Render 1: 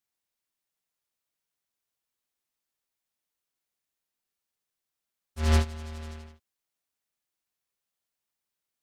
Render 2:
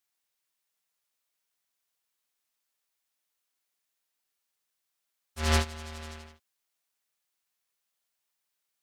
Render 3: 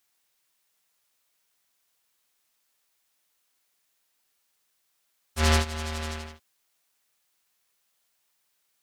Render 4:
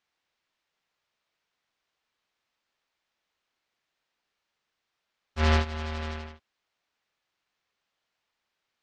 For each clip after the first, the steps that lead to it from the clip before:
low-shelf EQ 460 Hz −9.5 dB; level +4.5 dB
downward compressor 4 to 1, threshold −28 dBFS, peak gain reduction 7.5 dB; level +9 dB
high-frequency loss of the air 180 metres

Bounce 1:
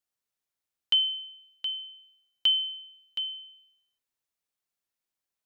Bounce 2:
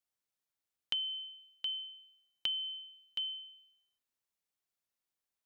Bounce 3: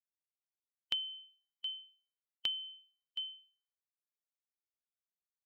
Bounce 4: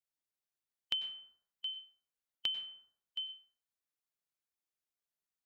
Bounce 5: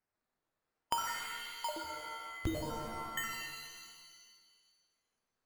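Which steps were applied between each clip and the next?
downward compressor, threshold −30 dBFS, peak gain reduction 10 dB; level −3 dB
spectral dynamics exaggerated over time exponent 2; level +1 dB
dense smooth reverb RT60 0.73 s, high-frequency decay 0.4×, pre-delay 85 ms, DRR 9.5 dB
sample-and-hold swept by an LFO 12×, swing 60% 0.58 Hz; reverb with rising layers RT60 1.6 s, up +7 semitones, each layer −2 dB, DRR 3.5 dB; level +1.5 dB

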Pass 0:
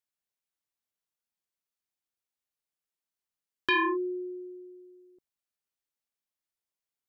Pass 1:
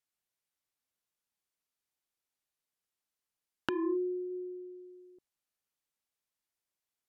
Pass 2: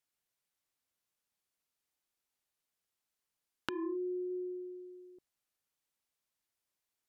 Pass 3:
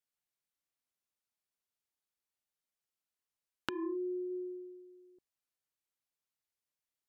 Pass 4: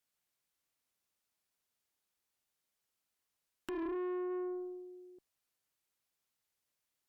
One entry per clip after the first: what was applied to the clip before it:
treble cut that deepens with the level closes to 370 Hz, closed at −34 dBFS; level +1.5 dB
downward compressor 6 to 1, threshold −36 dBFS, peak gain reduction 9 dB; level +1.5 dB
expander for the loud parts 1.5 to 1, over −49 dBFS; level +1 dB
tube saturation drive 42 dB, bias 0.3; level +6.5 dB

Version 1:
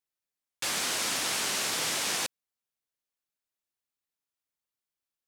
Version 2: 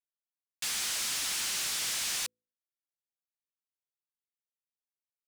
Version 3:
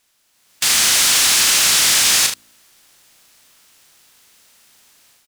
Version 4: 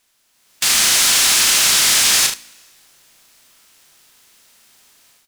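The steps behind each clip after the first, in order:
guitar amp tone stack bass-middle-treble 5-5-5; hum removal 55.52 Hz, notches 9; leveller curve on the samples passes 3; level −2 dB
compressor on every frequency bin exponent 0.6; automatic gain control gain up to 11.5 dB; on a send: ambience of single reflections 35 ms −5.5 dB, 75 ms −9.5 dB; on the sum: level +3.5 dB
convolution reverb, pre-delay 3 ms, DRR 12 dB

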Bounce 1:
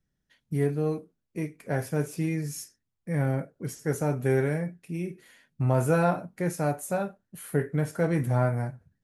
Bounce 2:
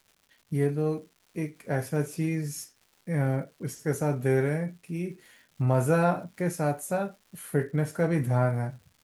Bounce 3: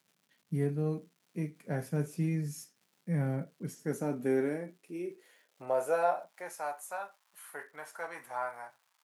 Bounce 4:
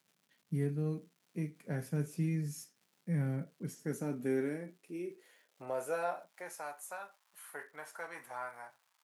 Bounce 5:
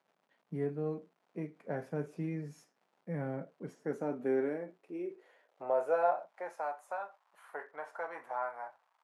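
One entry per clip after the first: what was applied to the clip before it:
surface crackle 340 per second −49 dBFS
high-pass filter sweep 170 Hz → 950 Hz, 0:03.53–0:06.80; level −8 dB
dynamic equaliser 720 Hz, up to −7 dB, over −44 dBFS, Q 0.96; level −1.5 dB
resonant band-pass 710 Hz, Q 1.2; level +8 dB

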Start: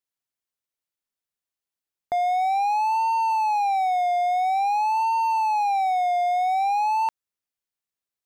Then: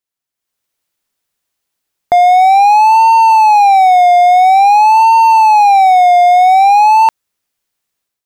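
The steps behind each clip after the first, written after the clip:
automatic gain control gain up to 12 dB
level +4 dB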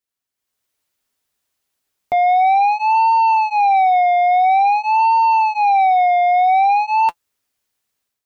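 soft clipping −11 dBFS, distortion −11 dB
notch comb filter 170 Hz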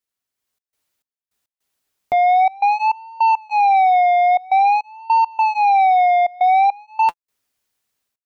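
gate pattern "xxxx.xx..x.xx" 103 BPM −24 dB

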